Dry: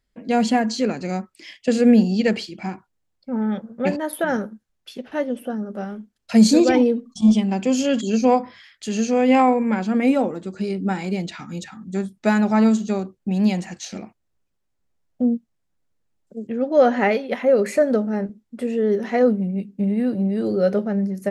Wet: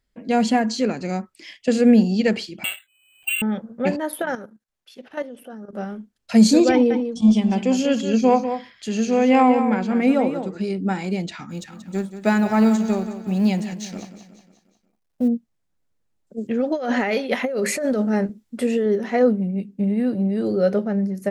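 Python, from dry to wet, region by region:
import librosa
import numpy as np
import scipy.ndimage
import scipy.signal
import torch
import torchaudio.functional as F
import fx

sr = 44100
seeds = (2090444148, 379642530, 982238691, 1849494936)

y = fx.chain(x, sr, fx.freq_invert(carrier_hz=3000),
    fx.resample_bad(factor=8, down='none', up='hold'),
    fx.band_squash(depth_pct=100), at=(2.64, 3.42))
y = fx.chain(y, sr, fx.low_shelf(hz=240.0, db=-10.0),
    fx.level_steps(step_db=12), at=(4.22, 5.73))
y = fx.chain(y, sr, fx.peak_eq(hz=8300.0, db=-4.0, octaves=1.2),
    fx.echo_single(ms=193, db=-9.0), at=(6.71, 10.63))
y = fx.chain(y, sr, fx.law_mismatch(coded='A'),
    fx.echo_feedback(ms=181, feedback_pct=51, wet_db=-11.5), at=(11.5, 15.28))
y = fx.chain(y, sr, fx.high_shelf(hz=2100.0, db=7.0),
    fx.over_compress(threshold_db=-21.0, ratio=-1.0), at=(16.38, 18.86))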